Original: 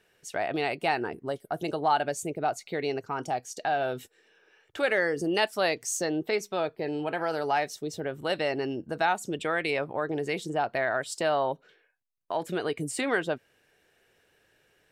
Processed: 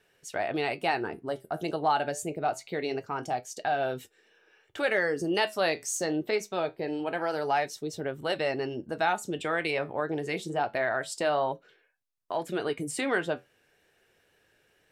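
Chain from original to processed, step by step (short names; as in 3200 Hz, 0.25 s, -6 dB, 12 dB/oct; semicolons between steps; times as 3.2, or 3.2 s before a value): flange 0.25 Hz, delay 7 ms, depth 6.3 ms, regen -67%; wow and flutter 21 cents; gain +3.5 dB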